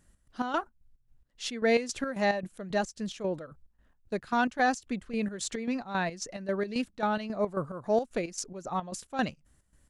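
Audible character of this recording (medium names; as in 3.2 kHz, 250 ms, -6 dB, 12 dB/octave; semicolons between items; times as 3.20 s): chopped level 3.7 Hz, depth 65%, duty 55%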